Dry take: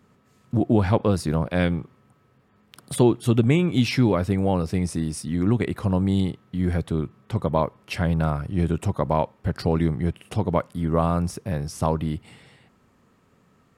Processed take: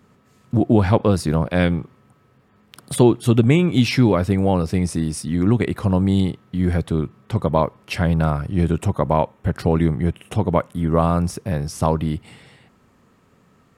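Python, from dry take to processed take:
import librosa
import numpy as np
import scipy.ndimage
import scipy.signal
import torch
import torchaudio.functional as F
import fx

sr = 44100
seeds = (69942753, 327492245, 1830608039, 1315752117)

y = fx.peak_eq(x, sr, hz=4700.0, db=-11.5, octaves=0.25, at=(8.84, 10.9))
y = y * librosa.db_to_amplitude(4.0)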